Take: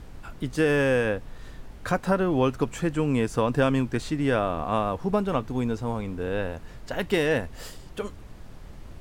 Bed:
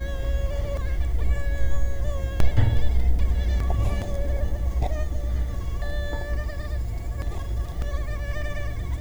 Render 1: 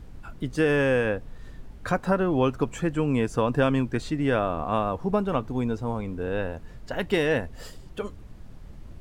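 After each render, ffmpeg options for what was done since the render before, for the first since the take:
ffmpeg -i in.wav -af "afftdn=noise_reduction=6:noise_floor=-44" out.wav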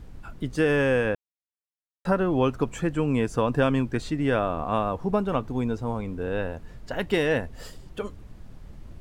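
ffmpeg -i in.wav -filter_complex "[0:a]asplit=3[link_01][link_02][link_03];[link_01]atrim=end=1.15,asetpts=PTS-STARTPTS,afade=type=out:start_time=1.146:duration=0.004:curve=hsin[link_04];[link_02]atrim=start=1.15:end=2.05,asetpts=PTS-STARTPTS,volume=0[link_05];[link_03]atrim=start=2.05,asetpts=PTS-STARTPTS,afade=type=in:duration=0.004:curve=hsin[link_06];[link_04][link_05][link_06]concat=n=3:v=0:a=1" out.wav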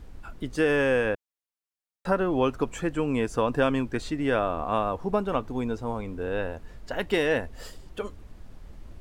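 ffmpeg -i in.wav -af "equalizer=frequency=140:width=1.1:gain=-6.5" out.wav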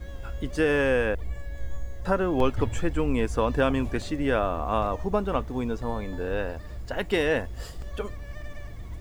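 ffmpeg -i in.wav -i bed.wav -filter_complex "[1:a]volume=-10.5dB[link_01];[0:a][link_01]amix=inputs=2:normalize=0" out.wav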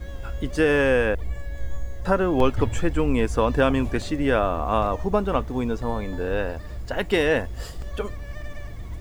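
ffmpeg -i in.wav -af "volume=3.5dB" out.wav

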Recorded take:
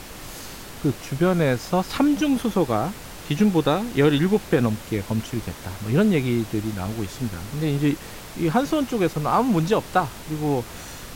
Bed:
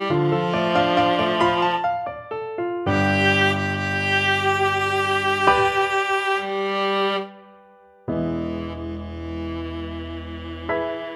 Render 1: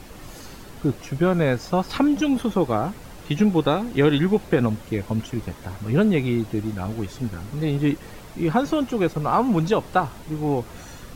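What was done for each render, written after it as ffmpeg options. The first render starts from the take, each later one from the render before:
ffmpeg -i in.wav -af "afftdn=noise_reduction=8:noise_floor=-39" out.wav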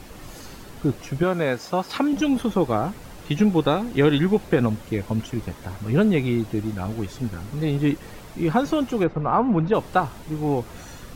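ffmpeg -i in.wav -filter_complex "[0:a]asettb=1/sr,asplit=3[link_01][link_02][link_03];[link_01]atrim=end=1.234[link_04];[link_02]atrim=start=1.23:end=2.13,asetpts=PTS-STARTPTS,afade=type=in:duration=0.004:curve=qsin,afade=type=out:start_time=0.896:duration=0.004:curve=qsin,highpass=frequency=300:poles=1[link_05];[link_03]atrim=start=2.126[link_06];[link_04][link_05]acrossfade=duration=0.004:curve1=hsin:curve2=qsin[link_07];[link_07][link_06]acrossfade=duration=0.004:curve1=qsin:curve2=hsin,asplit=3[link_08][link_09][link_10];[link_08]afade=type=out:start_time=9.03:duration=0.02[link_11];[link_09]lowpass=2000,afade=type=in:start_time=9.03:duration=0.02,afade=type=out:start_time=9.73:duration=0.02[link_12];[link_10]afade=type=in:start_time=9.73:duration=0.02[link_13];[link_11][link_12][link_13]amix=inputs=3:normalize=0" out.wav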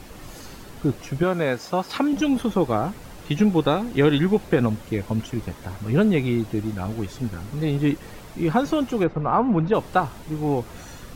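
ffmpeg -i in.wav -af anull out.wav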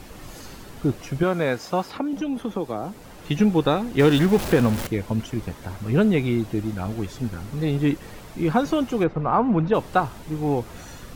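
ffmpeg -i in.wav -filter_complex "[0:a]asettb=1/sr,asplit=3[link_01][link_02][link_03];[link_01]atrim=end=1.894[link_04];[link_02]atrim=start=1.89:end=3.24,asetpts=PTS-STARTPTS,afade=type=in:duration=0.004:curve=qsin,afade=type=out:start_time=1.346:duration=0.004:curve=qsin,acrossover=split=180|930|3000[link_05][link_06][link_07][link_08];[link_05]acompressor=threshold=-46dB:ratio=3[link_09];[link_06]acompressor=threshold=-26dB:ratio=3[link_10];[link_07]acompressor=threshold=-45dB:ratio=3[link_11];[link_08]acompressor=threshold=-52dB:ratio=3[link_12];[link_09][link_10][link_11][link_12]amix=inputs=4:normalize=0[link_13];[link_03]atrim=start=3.236[link_14];[link_04][link_13]acrossfade=duration=0.004:curve1=hsin:curve2=qsin[link_15];[link_15][link_14]acrossfade=duration=0.004:curve1=qsin:curve2=hsin,asettb=1/sr,asplit=3[link_16][link_17][link_18];[link_16]atrim=end=3.994[link_19];[link_17]atrim=start=3.99:end=4.87,asetpts=PTS-STARTPTS,afade=type=in:duration=0.004:curve=qsin,afade=type=out:start_time=0.876:duration=0.004:curve=qsin,aeval=exprs='val(0)+0.5*0.0596*sgn(val(0))':channel_layout=same[link_20];[link_18]atrim=start=4.866[link_21];[link_19][link_20]acrossfade=duration=0.004:curve1=hsin:curve2=qsin[link_22];[link_22][link_21]acrossfade=duration=0.004:curve1=qsin:curve2=hsin" out.wav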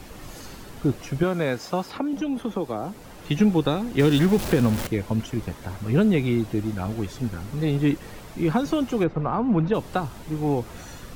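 ffmpeg -i in.wav -filter_complex "[0:a]acrossover=split=360|3000[link_01][link_02][link_03];[link_02]acompressor=threshold=-24dB:ratio=6[link_04];[link_01][link_04][link_03]amix=inputs=3:normalize=0" out.wav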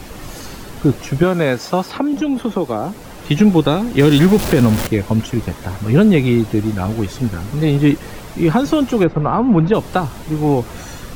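ffmpeg -i in.wav -af "volume=8.5dB,alimiter=limit=-2dB:level=0:latency=1" out.wav

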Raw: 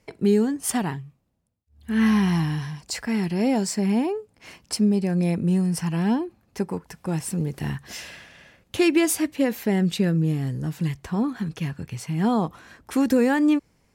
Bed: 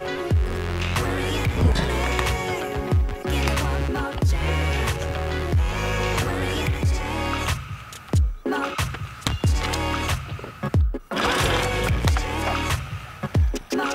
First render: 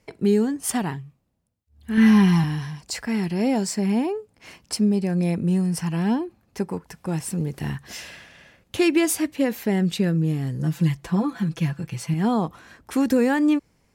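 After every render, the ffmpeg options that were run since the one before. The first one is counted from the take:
ffmpeg -i in.wav -filter_complex "[0:a]asettb=1/sr,asplit=3[link_01][link_02][link_03];[link_01]atrim=end=1.974[link_04];[link_02]atrim=start=1.97:end=2.44,asetpts=PTS-STARTPTS,afade=type=in:duration=0.004:curve=qsin,afade=type=out:start_time=0.466:duration=0.004:curve=qsin,aecho=1:1:5:0.78,atrim=end_sample=20727[link_05];[link_03]atrim=start=2.436[link_06];[link_04][link_05]acrossfade=duration=0.004:curve1=hsin:curve2=qsin[link_07];[link_07][link_06]acrossfade=duration=0.004:curve1=qsin:curve2=hsin,asettb=1/sr,asplit=3[link_08][link_09][link_10];[link_08]atrim=end=10.594[link_11];[link_09]atrim=start=10.59:end=12.14,asetpts=PTS-STARTPTS,afade=type=in:duration=0.004:curve=qsin,afade=type=out:start_time=1.546:duration=0.004:curve=qsin,aecho=1:1:5.9:0.85,atrim=end_sample=68355[link_12];[link_10]atrim=start=12.136[link_13];[link_11][link_12]acrossfade=duration=0.004:curve1=hsin:curve2=qsin[link_14];[link_14][link_13]acrossfade=duration=0.004:curve1=qsin:curve2=hsin" out.wav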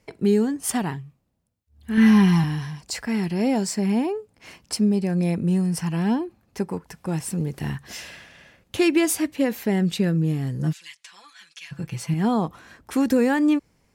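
ffmpeg -i in.wav -filter_complex "[0:a]asplit=3[link_01][link_02][link_03];[link_01]afade=type=out:start_time=10.72:duration=0.02[link_04];[link_02]asuperpass=centerf=4600:order=4:qfactor=0.68,afade=type=in:start_time=10.72:duration=0.02,afade=type=out:start_time=11.71:duration=0.02[link_05];[link_03]afade=type=in:start_time=11.71:duration=0.02[link_06];[link_04][link_05][link_06]amix=inputs=3:normalize=0" out.wav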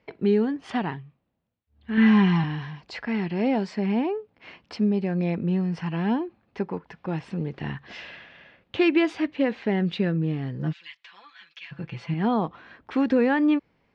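ffmpeg -i in.wav -af "lowpass=frequency=3600:width=0.5412,lowpass=frequency=3600:width=1.3066,lowshelf=frequency=130:gain=-10" out.wav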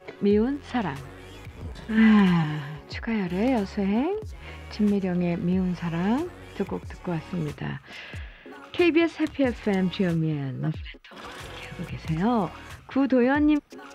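ffmpeg -i in.wav -i bed.wav -filter_complex "[1:a]volume=-19dB[link_01];[0:a][link_01]amix=inputs=2:normalize=0" out.wav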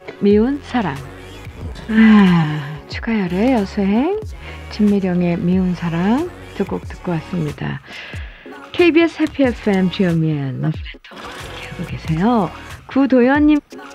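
ffmpeg -i in.wav -af "volume=8.5dB,alimiter=limit=-2dB:level=0:latency=1" out.wav

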